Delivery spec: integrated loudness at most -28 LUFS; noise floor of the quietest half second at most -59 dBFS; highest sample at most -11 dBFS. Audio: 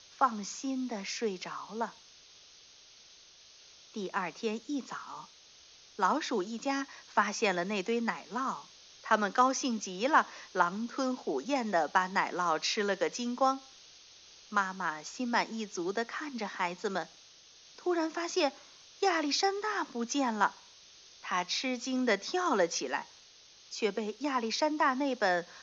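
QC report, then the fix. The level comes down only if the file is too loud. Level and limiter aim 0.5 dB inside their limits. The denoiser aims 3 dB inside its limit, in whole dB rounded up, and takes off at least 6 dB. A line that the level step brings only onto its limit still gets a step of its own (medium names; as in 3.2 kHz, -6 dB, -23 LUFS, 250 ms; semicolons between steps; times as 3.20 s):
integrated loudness -32.0 LUFS: pass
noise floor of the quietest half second -57 dBFS: fail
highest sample -10.0 dBFS: fail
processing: noise reduction 6 dB, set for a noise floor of -57 dBFS; peak limiter -11.5 dBFS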